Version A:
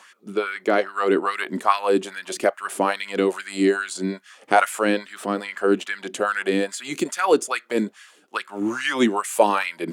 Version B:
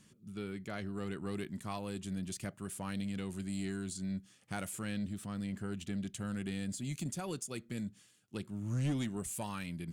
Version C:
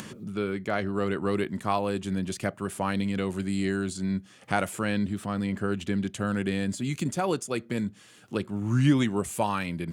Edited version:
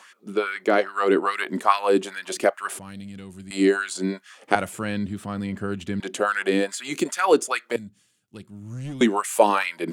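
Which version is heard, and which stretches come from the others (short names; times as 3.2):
A
2.79–3.51 from B
4.55–6 from C
7.76–9.01 from B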